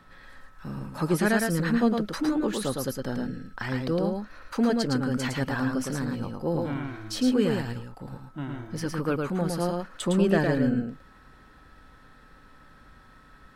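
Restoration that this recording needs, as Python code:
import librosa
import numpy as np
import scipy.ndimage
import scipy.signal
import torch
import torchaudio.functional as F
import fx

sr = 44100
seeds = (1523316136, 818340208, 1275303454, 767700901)

y = fx.notch(x, sr, hz=1300.0, q=30.0)
y = fx.fix_echo_inverse(y, sr, delay_ms=110, level_db=-3.5)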